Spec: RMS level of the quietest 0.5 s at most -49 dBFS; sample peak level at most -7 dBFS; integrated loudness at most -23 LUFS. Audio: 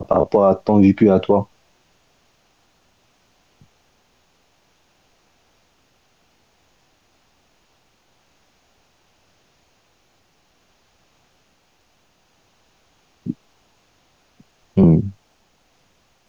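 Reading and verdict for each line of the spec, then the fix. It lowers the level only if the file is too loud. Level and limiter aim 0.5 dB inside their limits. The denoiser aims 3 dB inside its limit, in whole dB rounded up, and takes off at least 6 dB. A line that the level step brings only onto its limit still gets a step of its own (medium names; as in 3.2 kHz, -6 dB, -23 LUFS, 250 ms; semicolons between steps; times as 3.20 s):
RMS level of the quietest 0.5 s -61 dBFS: pass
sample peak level -3.5 dBFS: fail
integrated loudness -16.5 LUFS: fail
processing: trim -7 dB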